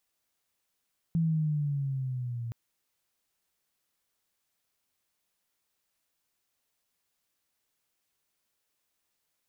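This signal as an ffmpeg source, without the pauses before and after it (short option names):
-f lavfi -i "aevalsrc='pow(10,(-23-10*t/1.37)/20)*sin(2*PI*167*1.37/(-6.5*log(2)/12)*(exp(-6.5*log(2)/12*t/1.37)-1))':d=1.37:s=44100"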